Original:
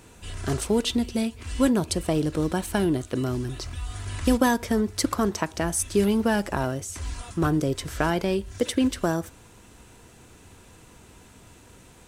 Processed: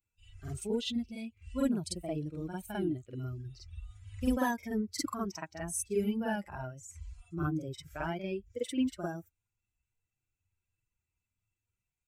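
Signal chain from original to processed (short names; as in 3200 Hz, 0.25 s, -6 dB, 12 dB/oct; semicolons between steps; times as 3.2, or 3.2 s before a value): per-bin expansion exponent 2; reverse echo 47 ms -5 dB; gain -7.5 dB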